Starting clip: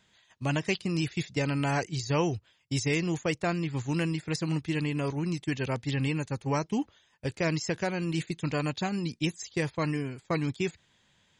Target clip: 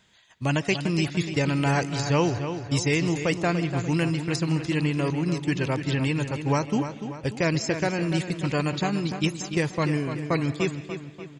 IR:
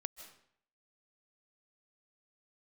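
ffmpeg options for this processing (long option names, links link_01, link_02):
-filter_complex "[0:a]asplit=2[link_01][link_02];[link_02]adelay=293,lowpass=frequency=4800:poles=1,volume=-9dB,asplit=2[link_03][link_04];[link_04]adelay=293,lowpass=frequency=4800:poles=1,volume=0.51,asplit=2[link_05][link_06];[link_06]adelay=293,lowpass=frequency=4800:poles=1,volume=0.51,asplit=2[link_07][link_08];[link_08]adelay=293,lowpass=frequency=4800:poles=1,volume=0.51,asplit=2[link_09][link_10];[link_10]adelay=293,lowpass=frequency=4800:poles=1,volume=0.51,asplit=2[link_11][link_12];[link_12]adelay=293,lowpass=frequency=4800:poles=1,volume=0.51[link_13];[link_01][link_03][link_05][link_07][link_09][link_11][link_13]amix=inputs=7:normalize=0,asplit=2[link_14][link_15];[1:a]atrim=start_sample=2205[link_16];[link_15][link_16]afir=irnorm=-1:irlink=0,volume=-1dB[link_17];[link_14][link_17]amix=inputs=2:normalize=0"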